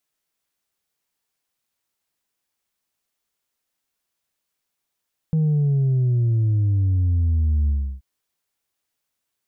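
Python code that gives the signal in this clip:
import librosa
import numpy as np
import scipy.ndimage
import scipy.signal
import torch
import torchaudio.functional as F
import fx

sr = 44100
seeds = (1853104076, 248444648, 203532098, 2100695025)

y = fx.sub_drop(sr, level_db=-16.5, start_hz=160.0, length_s=2.68, drive_db=2, fade_s=0.33, end_hz=65.0)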